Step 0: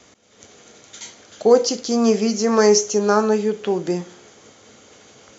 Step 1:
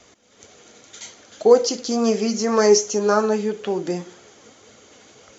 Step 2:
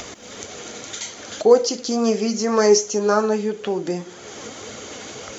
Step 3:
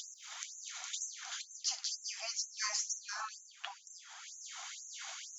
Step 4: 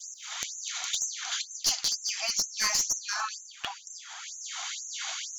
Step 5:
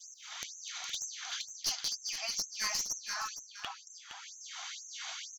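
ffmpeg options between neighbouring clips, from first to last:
ffmpeg -i in.wav -af "flanger=delay=1.3:depth=3:regen=56:speed=1.9:shape=triangular,volume=3dB" out.wav
ffmpeg -i in.wav -af "acompressor=mode=upward:threshold=-22dB:ratio=2.5" out.wav
ffmpeg -i in.wav -af "afftfilt=real='re*lt(hypot(re,im),0.251)':imag='im*lt(hypot(re,im),0.251)':win_size=1024:overlap=0.75,afftfilt=real='re*gte(b*sr/1024,630*pow(6000/630,0.5+0.5*sin(2*PI*2.1*pts/sr)))':imag='im*gte(b*sr/1024,630*pow(6000/630,0.5+0.5*sin(2*PI*2.1*pts/sr)))':win_size=1024:overlap=0.75,volume=-7.5dB" out.wav
ffmpeg -i in.wav -af "bandreject=frequency=5100:width=20,adynamicequalizer=threshold=0.00282:dfrequency=3800:dqfactor=1:tfrequency=3800:tqfactor=1:attack=5:release=100:ratio=0.375:range=2:mode=boostabove:tftype=bell,aeval=exprs='clip(val(0),-1,0.0299)':channel_layout=same,volume=8.5dB" out.wav
ffmpeg -i in.wav -filter_complex "[0:a]bandreject=frequency=7000:width=7.3,asplit=2[link_01][link_02];[link_02]aecho=0:1:465:0.316[link_03];[link_01][link_03]amix=inputs=2:normalize=0,volume=-6.5dB" out.wav

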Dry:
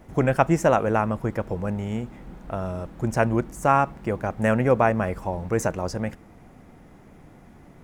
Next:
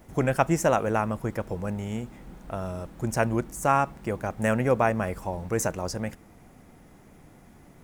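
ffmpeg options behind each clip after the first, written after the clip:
ffmpeg -i in.wav -af "highshelf=frequency=4700:gain=10,volume=-3.5dB" out.wav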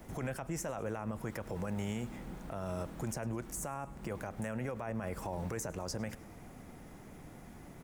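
ffmpeg -i in.wav -filter_complex "[0:a]acrossover=split=96|890[link_01][link_02][link_03];[link_01]acompressor=threshold=-48dB:ratio=4[link_04];[link_02]acompressor=threshold=-34dB:ratio=4[link_05];[link_03]acompressor=threshold=-40dB:ratio=4[link_06];[link_04][link_05][link_06]amix=inputs=3:normalize=0,alimiter=level_in=5.5dB:limit=-24dB:level=0:latency=1:release=36,volume=-5.5dB,aecho=1:1:104|208|312|416:0.0794|0.0453|0.0258|0.0147,volume=1dB" out.wav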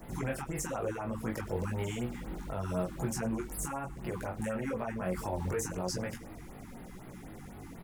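ffmpeg -i in.wav -filter_complex "[0:a]flanger=delay=16:depth=3.8:speed=1,asplit=2[link_01][link_02];[link_02]adelay=22,volume=-4dB[link_03];[link_01][link_03]amix=inputs=2:normalize=0,afftfilt=real='re*(1-between(b*sr/1024,490*pow(7400/490,0.5+0.5*sin(2*PI*4*pts/sr))/1.41,490*pow(7400/490,0.5+0.5*sin(2*PI*4*pts/sr))*1.41))':imag='im*(1-between(b*sr/1024,490*pow(7400/490,0.5+0.5*sin(2*PI*4*pts/sr))/1.41,490*pow(7400/490,0.5+0.5*sin(2*PI*4*pts/sr))*1.41))':win_size=1024:overlap=0.75,volume=6dB" out.wav

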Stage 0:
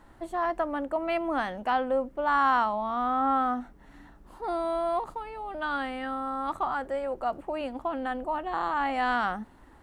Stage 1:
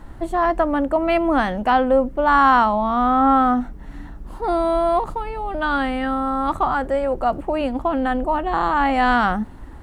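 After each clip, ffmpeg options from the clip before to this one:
ffmpeg -i in.wav -af "lowshelf=frequency=210:gain=11.5,volume=8.5dB" out.wav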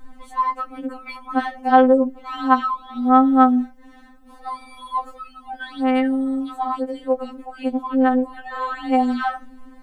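ffmpeg -i in.wav -af "afftfilt=real='re*3.46*eq(mod(b,12),0)':imag='im*3.46*eq(mod(b,12),0)':win_size=2048:overlap=0.75,volume=-2dB" out.wav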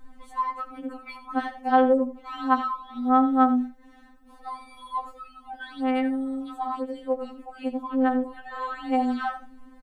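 ffmpeg -i in.wav -af "aecho=1:1:84:0.2,volume=-6dB" out.wav

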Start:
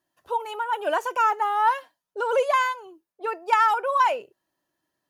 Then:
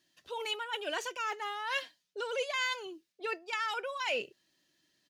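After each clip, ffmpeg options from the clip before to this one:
ffmpeg -i in.wav -af "highshelf=frequency=3700:gain=11,areverse,acompressor=threshold=-31dB:ratio=6,areverse,firequalizer=gain_entry='entry(110,0);entry(170,5);entry(900,-8);entry(2000,6);entry(3900,8);entry(11000,-11)':delay=0.05:min_phase=1" out.wav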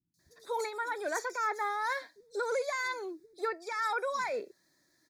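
ffmpeg -i in.wav -filter_complex "[0:a]alimiter=level_in=3.5dB:limit=-24dB:level=0:latency=1:release=122,volume=-3.5dB,asuperstop=centerf=2900:order=4:qfactor=1.7,acrossover=split=210|4400[link_01][link_02][link_03];[link_03]adelay=140[link_04];[link_02]adelay=190[link_05];[link_01][link_05][link_04]amix=inputs=3:normalize=0,volume=5.5dB" out.wav

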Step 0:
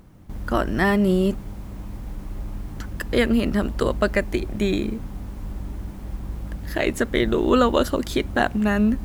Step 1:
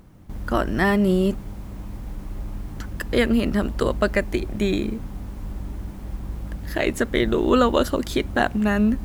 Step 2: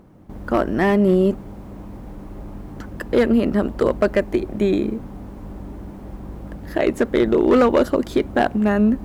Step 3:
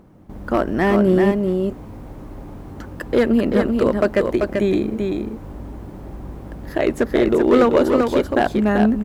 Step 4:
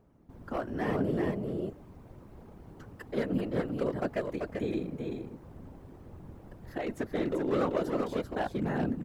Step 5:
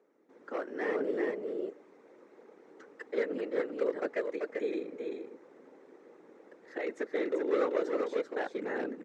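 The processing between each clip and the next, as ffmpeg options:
ffmpeg -i in.wav -af anull out.wav
ffmpeg -i in.wav -af "equalizer=frequency=450:width=0.3:gain=12.5,asoftclip=type=hard:threshold=-2dB,volume=-7dB" out.wav
ffmpeg -i in.wav -af "aecho=1:1:388:0.596" out.wav
ffmpeg -i in.wav -af "afftfilt=real='hypot(re,im)*cos(2*PI*random(0))':imag='hypot(re,im)*sin(2*PI*random(1))':win_size=512:overlap=0.75,volume=-8.5dB" out.wav
ffmpeg -i in.wav -af "highpass=frequency=330:width=0.5412,highpass=frequency=330:width=1.3066,equalizer=frequency=470:width_type=q:width=4:gain=5,equalizer=frequency=690:width_type=q:width=4:gain=-7,equalizer=frequency=1000:width_type=q:width=4:gain=-5,equalizer=frequency=2000:width_type=q:width=4:gain=5,equalizer=frequency=3000:width_type=q:width=4:gain=-6,equalizer=frequency=4700:width_type=q:width=4:gain=-5,lowpass=frequency=6900:width=0.5412,lowpass=frequency=6900:width=1.3066" out.wav

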